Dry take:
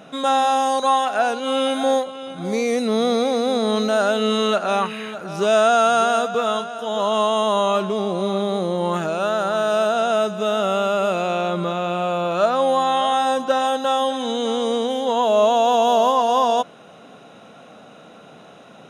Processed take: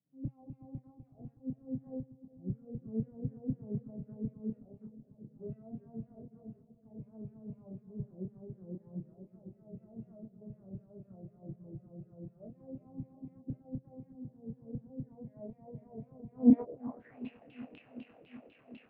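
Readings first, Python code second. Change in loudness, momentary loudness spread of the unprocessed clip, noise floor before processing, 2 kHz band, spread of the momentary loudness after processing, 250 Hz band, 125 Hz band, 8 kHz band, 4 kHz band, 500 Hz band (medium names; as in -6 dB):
-20.0 dB, 7 LU, -45 dBFS, under -35 dB, 13 LU, -10.0 dB, -8.5 dB, under -40 dB, under -40 dB, -30.5 dB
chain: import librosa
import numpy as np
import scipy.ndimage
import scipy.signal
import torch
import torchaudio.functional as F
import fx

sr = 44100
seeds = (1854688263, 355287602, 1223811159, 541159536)

y = scipy.ndimage.median_filter(x, 41, mode='constant')
y = fx.peak_eq(y, sr, hz=290.0, db=8.0, octaves=0.34)
y = fx.filter_lfo_bandpass(y, sr, shape='saw_down', hz=4.0, low_hz=280.0, high_hz=3800.0, q=2.9)
y = fx.vibrato(y, sr, rate_hz=4.5, depth_cents=32.0)
y = fx.filter_sweep_lowpass(y, sr, from_hz=130.0, to_hz=2700.0, start_s=16.3, end_s=17.18, q=6.9)
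y = fx.doubler(y, sr, ms=27.0, db=-4.0)
y = fx.echo_filtered(y, sr, ms=373, feedback_pct=84, hz=930.0, wet_db=-13.0)
y = fx.upward_expand(y, sr, threshold_db=-55.0, expansion=1.5)
y = y * 10.0 ** (7.0 / 20.0)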